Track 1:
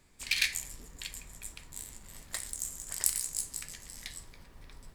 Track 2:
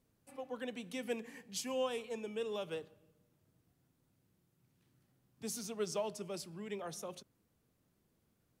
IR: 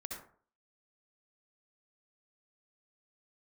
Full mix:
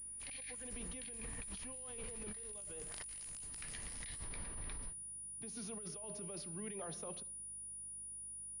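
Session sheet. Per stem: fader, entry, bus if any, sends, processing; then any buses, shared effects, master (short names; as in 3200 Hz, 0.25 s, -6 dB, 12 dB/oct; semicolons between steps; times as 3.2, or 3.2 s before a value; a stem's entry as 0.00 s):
-14.0 dB, 0.00 s, no send, AGC gain up to 15.5 dB
-5.0 dB, 0.00 s, send -16 dB, dry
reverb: on, RT60 0.50 s, pre-delay 57 ms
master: negative-ratio compressor -49 dBFS, ratio -1; hum 50 Hz, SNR 18 dB; pulse-width modulation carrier 9700 Hz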